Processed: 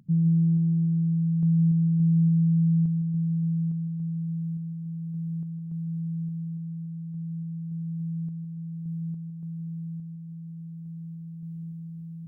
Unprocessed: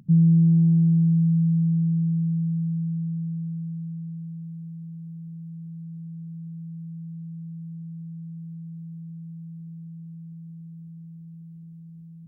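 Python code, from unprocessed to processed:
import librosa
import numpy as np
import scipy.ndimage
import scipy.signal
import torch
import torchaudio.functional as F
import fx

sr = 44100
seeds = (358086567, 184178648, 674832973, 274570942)

y = fx.rider(x, sr, range_db=5, speed_s=0.5)
y = fx.tremolo_random(y, sr, seeds[0], hz=3.5, depth_pct=55)
y = y + 10.0 ** (-11.5 / 20.0) * np.pad(y, (int(158 * sr / 1000.0), 0))[:len(y)]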